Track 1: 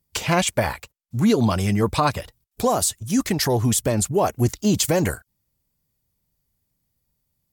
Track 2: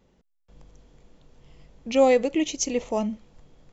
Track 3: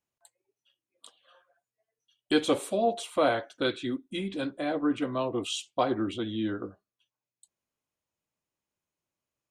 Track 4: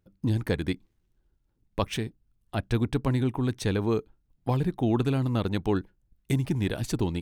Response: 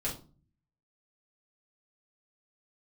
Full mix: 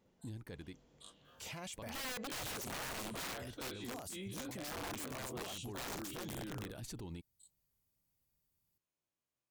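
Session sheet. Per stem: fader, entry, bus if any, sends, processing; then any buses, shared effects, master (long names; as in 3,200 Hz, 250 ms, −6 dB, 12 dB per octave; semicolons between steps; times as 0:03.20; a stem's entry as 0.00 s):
−11.5 dB, 1.25 s, bus A, no send, downward compressor 12 to 1, threshold −21 dBFS, peak gain reduction 8.5 dB
−9.0 dB, 0.00 s, no bus, no send, high-pass filter 88 Hz
−9.5 dB, 0.00 s, no bus, no send, every bin's largest magnitude spread in time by 60 ms
0:05.25 −18.5 dB → 0:05.75 −7.5 dB, 0.00 s, bus A, no send, no processing
bus A: 0.0 dB, high-shelf EQ 4,000 Hz +4.5 dB; brickwall limiter −28.5 dBFS, peak gain reduction 9 dB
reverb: not used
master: wrap-around overflow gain 28 dB; brickwall limiter −37.5 dBFS, peak gain reduction 9.5 dB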